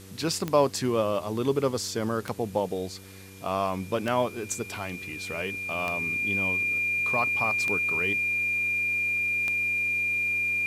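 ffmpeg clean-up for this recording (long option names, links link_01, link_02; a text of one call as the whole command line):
ffmpeg -i in.wav -af "adeclick=threshold=4,bandreject=frequency=96.1:width_type=h:width=4,bandreject=frequency=192.2:width_type=h:width=4,bandreject=frequency=288.3:width_type=h:width=4,bandreject=frequency=384.4:width_type=h:width=4,bandreject=frequency=480.5:width_type=h:width=4,bandreject=frequency=2400:width=30,afwtdn=0.0028" out.wav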